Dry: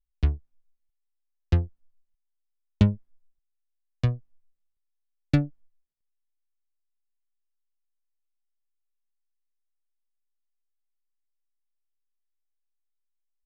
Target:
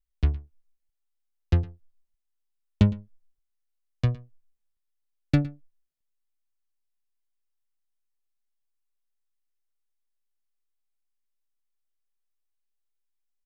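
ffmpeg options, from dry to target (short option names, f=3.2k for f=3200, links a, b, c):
-af "aecho=1:1:111:0.106"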